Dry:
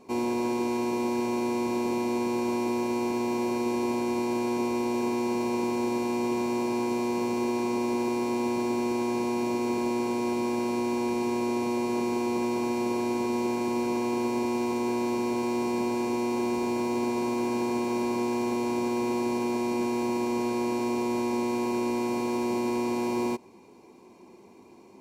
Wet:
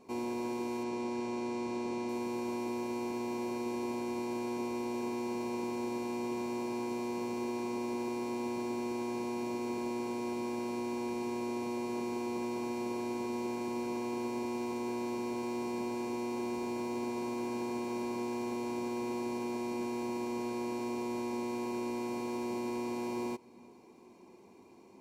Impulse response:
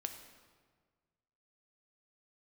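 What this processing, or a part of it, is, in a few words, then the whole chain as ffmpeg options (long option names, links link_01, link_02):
ducked reverb: -filter_complex "[0:a]asplit=3[link_01][link_02][link_03];[1:a]atrim=start_sample=2205[link_04];[link_02][link_04]afir=irnorm=-1:irlink=0[link_05];[link_03]apad=whole_len=1102930[link_06];[link_05][link_06]sidechaincompress=threshold=-41dB:ratio=8:attack=16:release=267,volume=-2.5dB[link_07];[link_01][link_07]amix=inputs=2:normalize=0,asettb=1/sr,asplit=3[link_08][link_09][link_10];[link_08]atrim=end=0.834[link_11];[link_09]atrim=start=0.83:end=2.09,asetpts=PTS-STARTPTS,afade=type=in:duration=0.004:curve=qsin,afade=type=out:start_time=1.256:duration=0.004:curve=qsin,lowpass=7800[link_12];[link_10]atrim=start=2.086[link_13];[link_11][link_12]acrossfade=duration=0.004:curve1=hsin:curve2=qsin[link_14];[link_14][link_13]acrossfade=duration=0.004:curve1=qsin:curve2=hsin,volume=-9dB"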